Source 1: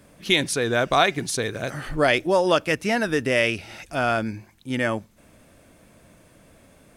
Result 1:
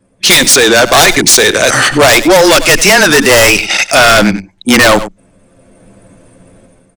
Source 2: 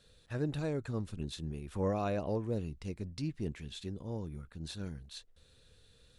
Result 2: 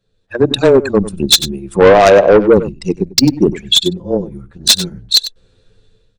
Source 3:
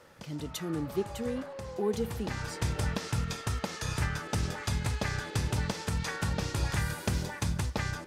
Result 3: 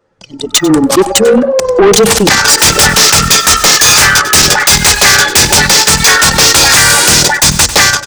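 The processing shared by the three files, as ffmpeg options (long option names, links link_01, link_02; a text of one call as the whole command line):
ffmpeg -i in.wav -filter_complex "[0:a]aemphasis=mode=production:type=riaa,bandreject=frequency=60:width_type=h:width=6,bandreject=frequency=120:width_type=h:width=6,bandreject=frequency=180:width_type=h:width=6,bandreject=frequency=240:width_type=h:width=6,bandreject=frequency=300:width_type=h:width=6,anlmdn=6.31,lowpass=frequency=7900:width=0.5412,lowpass=frequency=7900:width=1.3066,lowshelf=frequency=77:gain=-8,dynaudnorm=framelen=390:gausssize=3:maxgain=14dB,aeval=exprs='0.944*sin(PI/2*4.47*val(0)/0.944)':channel_layout=same,afreqshift=-17,asoftclip=type=tanh:threshold=-10dB,asplit=2[link_01][link_02];[link_02]aecho=0:1:96:0.119[link_03];[link_01][link_03]amix=inputs=2:normalize=0,alimiter=level_in=14.5dB:limit=-1dB:release=50:level=0:latency=1,volume=-1dB" out.wav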